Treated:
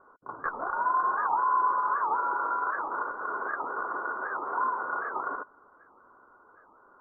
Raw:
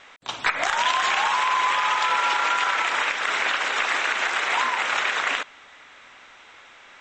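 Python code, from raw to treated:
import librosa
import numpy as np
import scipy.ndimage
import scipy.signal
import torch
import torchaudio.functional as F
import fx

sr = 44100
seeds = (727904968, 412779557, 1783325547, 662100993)

y = scipy.signal.sosfilt(scipy.signal.cheby1(6, 9, 1500.0, 'lowpass', fs=sr, output='sos'), x)
y = fx.record_warp(y, sr, rpm=78.0, depth_cents=250.0)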